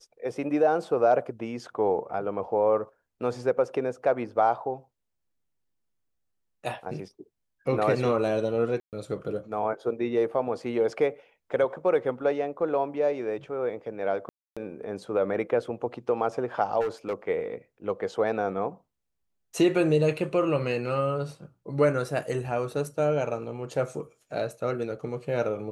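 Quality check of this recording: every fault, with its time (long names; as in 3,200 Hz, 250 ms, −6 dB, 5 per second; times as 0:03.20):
0:08.80–0:08.93: drop-out 128 ms
0:14.29–0:14.57: drop-out 276 ms
0:16.80–0:17.14: clipping −24.5 dBFS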